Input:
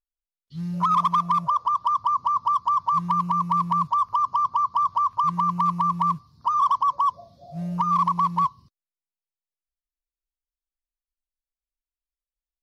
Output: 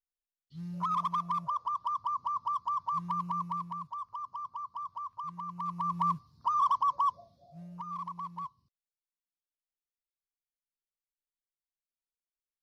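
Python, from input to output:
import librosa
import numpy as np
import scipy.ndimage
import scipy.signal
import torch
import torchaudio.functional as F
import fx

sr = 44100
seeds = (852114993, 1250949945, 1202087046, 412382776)

y = fx.gain(x, sr, db=fx.line((3.4, -10.5), (3.8, -17.5), (5.48, -17.5), (6.04, -6.5), (7.08, -6.5), (7.69, -18.0)))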